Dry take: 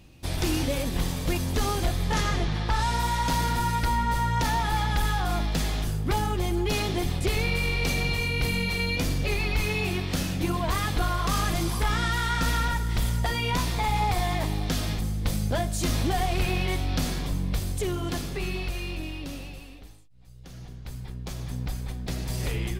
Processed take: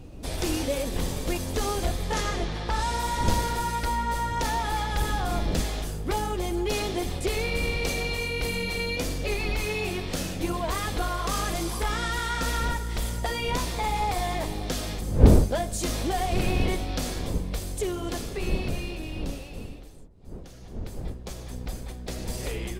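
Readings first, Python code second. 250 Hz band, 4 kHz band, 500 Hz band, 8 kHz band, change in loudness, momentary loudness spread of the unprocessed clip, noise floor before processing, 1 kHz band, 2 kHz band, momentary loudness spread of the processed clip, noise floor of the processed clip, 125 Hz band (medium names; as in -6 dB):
-0.5 dB, -1.5 dB, +2.5 dB, +0.5 dB, -1.0 dB, 8 LU, -43 dBFS, -1.0 dB, -2.0 dB, 10 LU, -40 dBFS, -2.5 dB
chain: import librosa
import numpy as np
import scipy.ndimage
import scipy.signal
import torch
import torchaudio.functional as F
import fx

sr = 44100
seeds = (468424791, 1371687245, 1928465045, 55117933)

y = fx.dmg_wind(x, sr, seeds[0], corner_hz=130.0, level_db=-27.0)
y = fx.graphic_eq(y, sr, hz=(125, 500, 8000), db=(-7, 6, 4))
y = F.gain(torch.from_numpy(y), -2.5).numpy()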